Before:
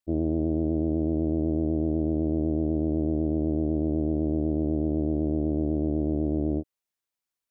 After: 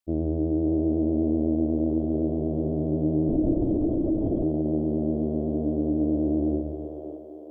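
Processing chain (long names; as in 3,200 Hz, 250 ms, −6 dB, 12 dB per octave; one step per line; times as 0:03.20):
echo with a time of its own for lows and highs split 370 Hz, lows 134 ms, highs 568 ms, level −4.5 dB
0:03.29–0:04.43: linear-prediction vocoder at 8 kHz whisper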